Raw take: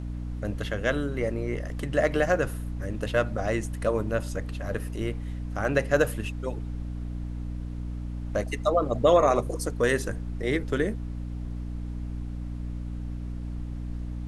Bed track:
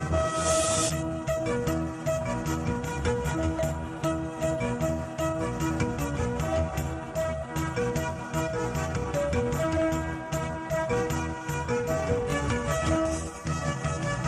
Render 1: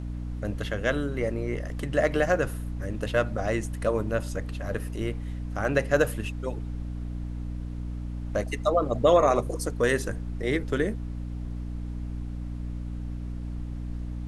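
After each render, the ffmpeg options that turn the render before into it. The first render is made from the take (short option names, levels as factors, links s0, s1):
-af anull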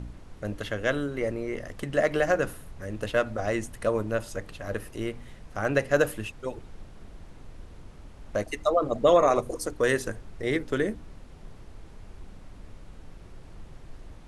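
-af "bandreject=f=60:t=h:w=4,bandreject=f=120:t=h:w=4,bandreject=f=180:t=h:w=4,bandreject=f=240:t=h:w=4,bandreject=f=300:t=h:w=4"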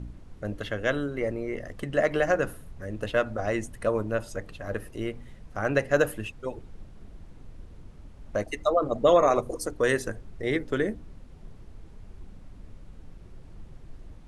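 -af "afftdn=nr=6:nf=-47"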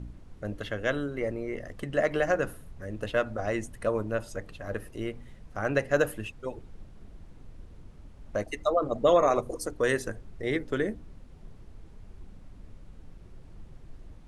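-af "volume=0.794"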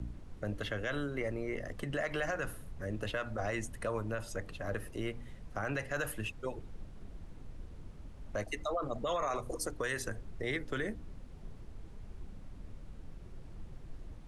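-filter_complex "[0:a]acrossover=split=130|810|1600[s0][s1][s2][s3];[s1]acompressor=threshold=0.0178:ratio=6[s4];[s0][s4][s2][s3]amix=inputs=4:normalize=0,alimiter=level_in=1.19:limit=0.0631:level=0:latency=1:release=26,volume=0.841"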